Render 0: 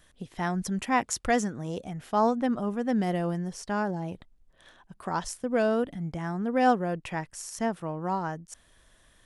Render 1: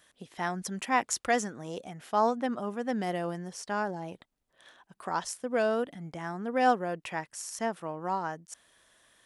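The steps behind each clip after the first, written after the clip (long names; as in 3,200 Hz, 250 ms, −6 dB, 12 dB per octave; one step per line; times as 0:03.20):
high-pass filter 410 Hz 6 dB per octave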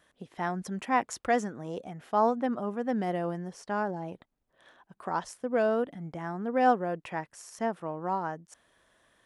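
high-shelf EQ 2,400 Hz −11.5 dB
level +2 dB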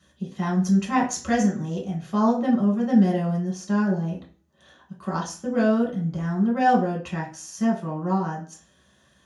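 convolution reverb RT60 0.40 s, pre-delay 3 ms, DRR −3.5 dB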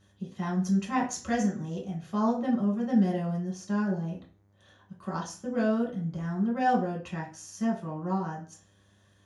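hum with harmonics 100 Hz, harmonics 23, −59 dBFS −8 dB per octave
level −6 dB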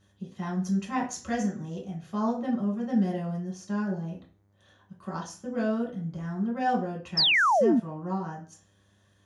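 sound drawn into the spectrogram fall, 0:07.17–0:07.80, 210–5,500 Hz −20 dBFS
level −1.5 dB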